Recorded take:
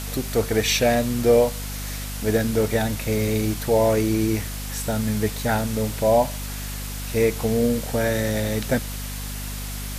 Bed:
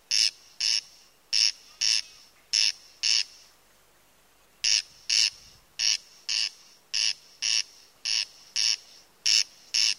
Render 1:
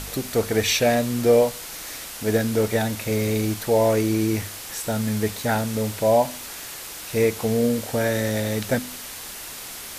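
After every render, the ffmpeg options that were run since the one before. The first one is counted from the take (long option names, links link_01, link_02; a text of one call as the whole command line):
ffmpeg -i in.wav -af "bandreject=frequency=50:width_type=h:width=4,bandreject=frequency=100:width_type=h:width=4,bandreject=frequency=150:width_type=h:width=4,bandreject=frequency=200:width_type=h:width=4,bandreject=frequency=250:width_type=h:width=4" out.wav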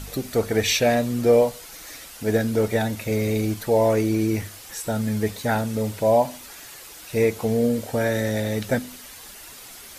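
ffmpeg -i in.wav -af "afftdn=noise_reduction=8:noise_floor=-37" out.wav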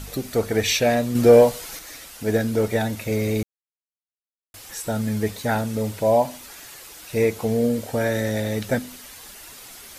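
ffmpeg -i in.wav -filter_complex "[0:a]asettb=1/sr,asplit=3[link_01][link_02][link_03];[link_01]atrim=end=1.154[link_04];[link_02]atrim=start=1.15:end=1.79,asetpts=PTS-STARTPTS,afade=type=in:duration=0.004:curve=qsin,afade=type=out:start_time=0.636:duration=0.004:curve=qsin,acontrast=35[link_05];[link_03]atrim=start=1.786[link_06];[link_04][link_05]acrossfade=duration=0.004:curve1=hsin:curve2=qsin[link_07];[link_07][link_06]acrossfade=duration=0.004:curve1=qsin:curve2=hsin,asplit=3[link_08][link_09][link_10];[link_08]atrim=end=3.43,asetpts=PTS-STARTPTS,afade=type=out:start_time=3.426:duration=0.004:curve=hsin[link_11];[link_09]atrim=start=3.43:end=4.54,asetpts=PTS-STARTPTS,volume=0[link_12];[link_10]atrim=start=4.54,asetpts=PTS-STARTPTS,afade=type=in:duration=0.004:curve=hsin[link_13];[link_11][link_12][link_13]concat=n=3:v=0:a=1" out.wav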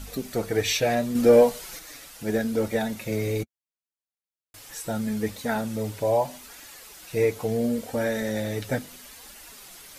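ffmpeg -i in.wav -af "flanger=delay=3.4:depth=3.8:regen=-30:speed=0.75:shape=triangular" out.wav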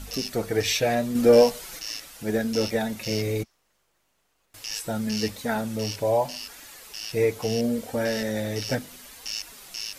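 ffmpeg -i in.wav -i bed.wav -filter_complex "[1:a]volume=-11dB[link_01];[0:a][link_01]amix=inputs=2:normalize=0" out.wav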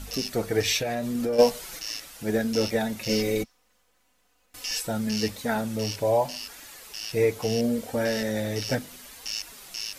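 ffmpeg -i in.wav -filter_complex "[0:a]asplit=3[link_01][link_02][link_03];[link_01]afade=type=out:start_time=0.78:duration=0.02[link_04];[link_02]acompressor=threshold=-25dB:ratio=5:attack=3.2:release=140:knee=1:detection=peak,afade=type=in:start_time=0.78:duration=0.02,afade=type=out:start_time=1.38:duration=0.02[link_05];[link_03]afade=type=in:start_time=1.38:duration=0.02[link_06];[link_04][link_05][link_06]amix=inputs=3:normalize=0,asettb=1/sr,asplit=3[link_07][link_08][link_09];[link_07]atrim=end=3.094[link_10];[link_08]atrim=start=3.09:end=4.87,asetpts=PTS-STARTPTS,afade=type=in:duration=0.004:curve=qsin,afade=type=out:start_time=1.776:duration=0.004:curve=qsin,aecho=1:1:4:0.96,atrim=end_sample=78498[link_11];[link_09]atrim=start=4.866[link_12];[link_10][link_11]acrossfade=duration=0.004:curve1=hsin:curve2=qsin[link_13];[link_13][link_12]acrossfade=duration=0.004:curve1=qsin:curve2=hsin" out.wav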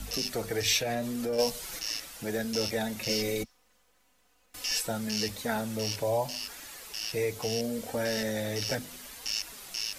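ffmpeg -i in.wav -filter_complex "[0:a]acrossover=split=170|3000[link_01][link_02][link_03];[link_02]acompressor=threshold=-30dB:ratio=2[link_04];[link_01][link_04][link_03]amix=inputs=3:normalize=0,acrossover=split=400|6000[link_05][link_06][link_07];[link_05]alimiter=level_in=7dB:limit=-24dB:level=0:latency=1,volume=-7dB[link_08];[link_08][link_06][link_07]amix=inputs=3:normalize=0" out.wav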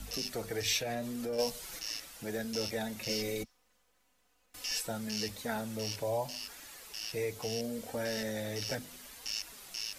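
ffmpeg -i in.wav -af "volume=-5dB" out.wav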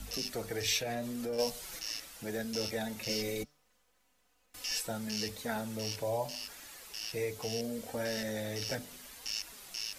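ffmpeg -i in.wav -af "bandreject=frequency=146.8:width_type=h:width=4,bandreject=frequency=293.6:width_type=h:width=4,bandreject=frequency=440.4:width_type=h:width=4,bandreject=frequency=587.2:width_type=h:width=4,bandreject=frequency=734:width_type=h:width=4,bandreject=frequency=880.8:width_type=h:width=4,bandreject=frequency=1027.6:width_type=h:width=4,bandreject=frequency=1174.4:width_type=h:width=4,bandreject=frequency=1321.2:width_type=h:width=4,bandreject=frequency=1468:width_type=h:width=4" out.wav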